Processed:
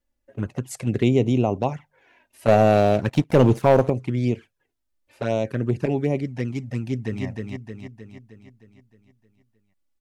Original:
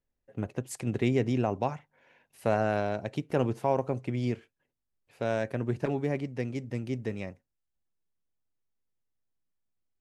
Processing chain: envelope flanger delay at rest 3.5 ms, full sweep at -24.5 dBFS; 2.48–3.9 sample leveller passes 2; 6.81–7.25 echo throw 0.31 s, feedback 55%, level -3.5 dB; gain +8 dB

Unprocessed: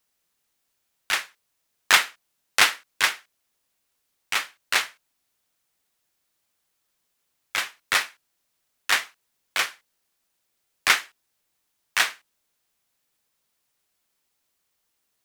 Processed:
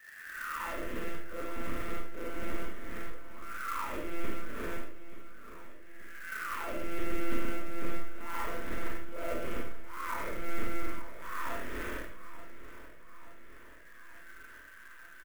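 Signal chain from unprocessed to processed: spectral swells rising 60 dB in 1.84 s; recorder AGC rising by 13 dB/s; auto-wah 250–1800 Hz, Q 11, down, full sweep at -14.5 dBFS; high shelf 2500 Hz -9.5 dB; monotone LPC vocoder at 8 kHz 170 Hz; bell 740 Hz +7 dB 1.2 oct; fixed phaser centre 320 Hz, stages 4; feedback echo 0.881 s, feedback 59%, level -14 dB; reverb RT60 0.45 s, pre-delay 25 ms, DRR -1.5 dB; clock jitter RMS 0.025 ms; gain +9.5 dB

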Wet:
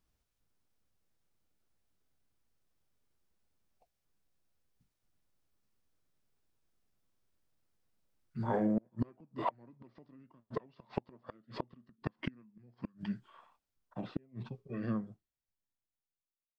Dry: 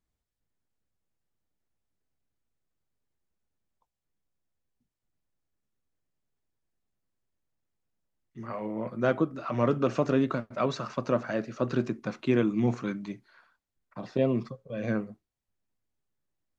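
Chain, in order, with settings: ending faded out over 5.23 s; flipped gate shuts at -24 dBFS, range -37 dB; formant shift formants -5 st; gain +4.5 dB

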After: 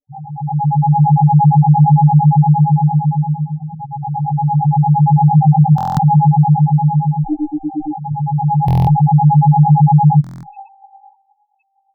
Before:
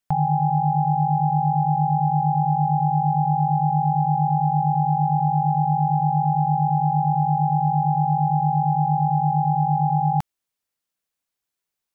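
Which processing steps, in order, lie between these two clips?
7.24–8 minimum comb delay 2.7 ms; sample-and-hold 18×; 5.34–6.05 doubler 19 ms -4 dB; limiter -17 dBFS, peak gain reduction 9 dB; split-band echo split 610 Hz, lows 88 ms, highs 0.469 s, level -10 dB; reverb removal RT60 1.3 s; spectral gate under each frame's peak -15 dB strong; AGC gain up to 15 dB; loudest bins only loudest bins 2; stuck buffer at 5.76/8.66/10.22, samples 1024, times 8; endless phaser +0.25 Hz; gain +6.5 dB

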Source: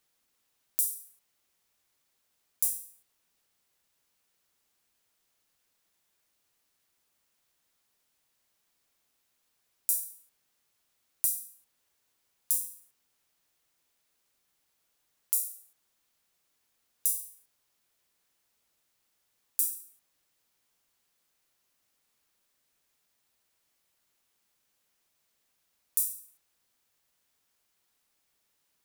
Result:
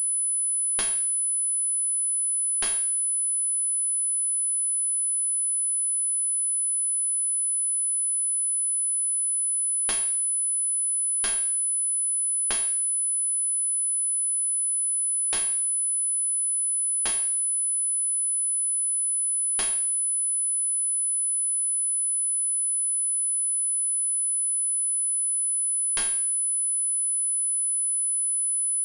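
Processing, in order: in parallel at -2 dB: compressor, threshold -40 dBFS, peak gain reduction 16.5 dB; on the sum: pulse-width modulation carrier 10000 Hz

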